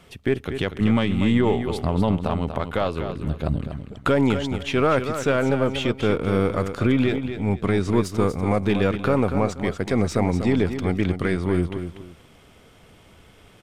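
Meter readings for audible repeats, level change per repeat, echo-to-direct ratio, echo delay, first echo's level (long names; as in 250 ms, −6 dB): 2, −11.5 dB, −8.5 dB, 241 ms, −9.0 dB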